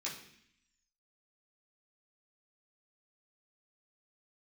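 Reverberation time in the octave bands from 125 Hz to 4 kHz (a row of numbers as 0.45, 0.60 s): 0.85, 0.95, 0.65, 0.65, 0.90, 0.85 s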